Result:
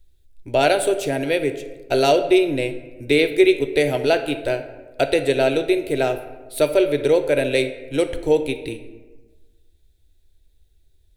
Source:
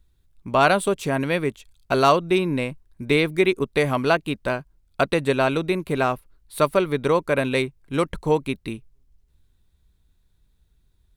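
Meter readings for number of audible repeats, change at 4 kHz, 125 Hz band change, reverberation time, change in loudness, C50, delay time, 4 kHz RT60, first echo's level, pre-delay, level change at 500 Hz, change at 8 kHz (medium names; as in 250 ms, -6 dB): no echo, +3.5 dB, -3.5 dB, 1.3 s, +2.5 dB, 10.5 dB, no echo, 0.65 s, no echo, 3 ms, +4.0 dB, +4.0 dB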